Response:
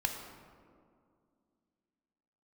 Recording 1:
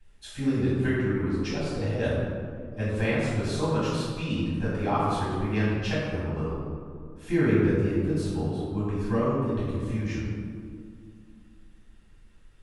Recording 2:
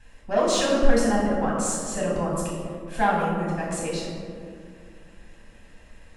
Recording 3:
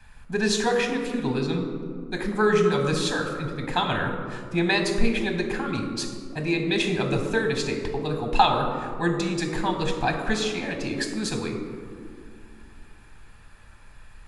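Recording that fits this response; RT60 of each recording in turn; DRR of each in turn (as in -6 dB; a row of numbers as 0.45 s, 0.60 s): 3; 2.2 s, 2.2 s, 2.3 s; -9.5 dB, -4.0 dB, 4.0 dB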